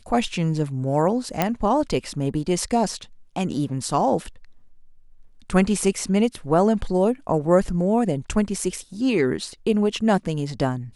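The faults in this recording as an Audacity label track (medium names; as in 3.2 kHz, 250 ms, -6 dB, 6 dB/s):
1.420000	1.420000	pop -5 dBFS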